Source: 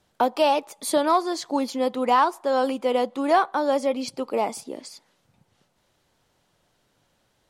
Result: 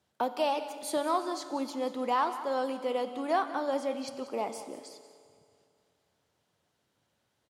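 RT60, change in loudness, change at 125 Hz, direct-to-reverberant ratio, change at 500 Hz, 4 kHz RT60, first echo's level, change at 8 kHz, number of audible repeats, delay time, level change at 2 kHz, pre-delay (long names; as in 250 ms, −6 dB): 2.4 s, −8.5 dB, can't be measured, 8.5 dB, −8.5 dB, 2.3 s, −14.5 dB, −8.5 dB, 1, 185 ms, −8.5 dB, 7 ms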